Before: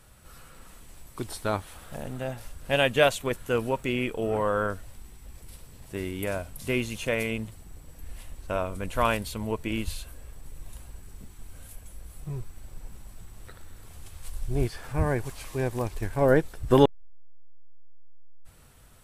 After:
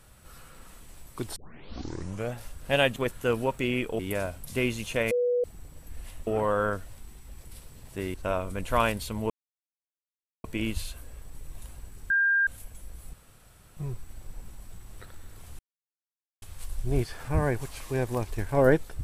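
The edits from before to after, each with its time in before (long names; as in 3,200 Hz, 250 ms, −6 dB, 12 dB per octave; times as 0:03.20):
0:01.36: tape start 1.00 s
0:02.96–0:03.21: remove
0:04.24–0:06.11: move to 0:08.39
0:07.23–0:07.56: beep over 489 Hz −22 dBFS
0:09.55: splice in silence 1.14 s
0:11.21–0:11.58: beep over 1,600 Hz −20 dBFS
0:12.24: splice in room tone 0.64 s
0:14.06: splice in silence 0.83 s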